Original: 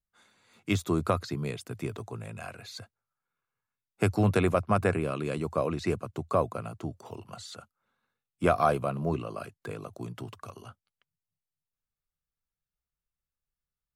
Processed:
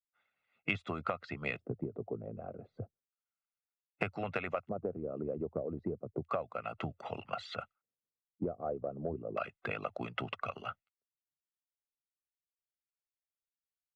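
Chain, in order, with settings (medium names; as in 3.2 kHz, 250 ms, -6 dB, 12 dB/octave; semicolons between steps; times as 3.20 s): treble shelf 2.9 kHz -11 dB; gate with hold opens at -48 dBFS; LFO low-pass square 0.32 Hz 380–2600 Hz; harmonic-percussive split harmonic -16 dB; comb 1.5 ms, depth 51%; compression 16:1, threshold -38 dBFS, peak gain reduction 20.5 dB; tilt EQ +1.5 dB/octave; trim +7.5 dB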